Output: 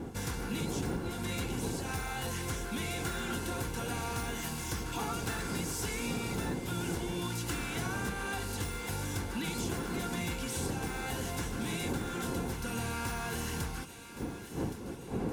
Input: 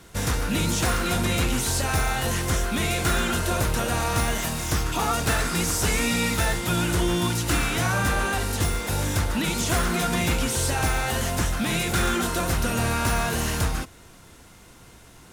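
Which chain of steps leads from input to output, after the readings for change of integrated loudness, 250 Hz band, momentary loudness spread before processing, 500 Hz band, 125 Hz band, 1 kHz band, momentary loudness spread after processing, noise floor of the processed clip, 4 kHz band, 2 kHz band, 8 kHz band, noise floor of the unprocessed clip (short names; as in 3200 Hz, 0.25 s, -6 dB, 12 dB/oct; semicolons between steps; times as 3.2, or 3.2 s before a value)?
-11.5 dB, -8.5 dB, 3 LU, -10.0 dB, -11.0 dB, -12.0 dB, 3 LU, -43 dBFS, -12.5 dB, -12.0 dB, -12.5 dB, -49 dBFS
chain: wind noise 350 Hz -25 dBFS; compressor 10:1, threshold -22 dBFS, peak gain reduction 14.5 dB; notch comb 620 Hz; thinning echo 1.119 s, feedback 58%, high-pass 1200 Hz, level -11 dB; gain -8 dB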